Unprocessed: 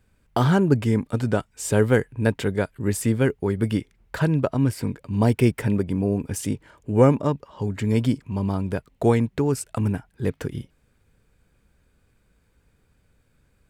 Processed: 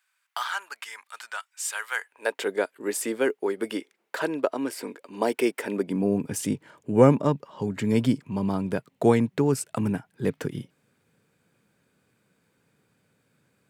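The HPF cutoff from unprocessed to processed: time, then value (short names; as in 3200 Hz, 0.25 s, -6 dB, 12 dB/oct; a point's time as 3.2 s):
HPF 24 dB/oct
1.9 s 1100 Hz
2.5 s 320 Hz
5.65 s 320 Hz
6.16 s 130 Hz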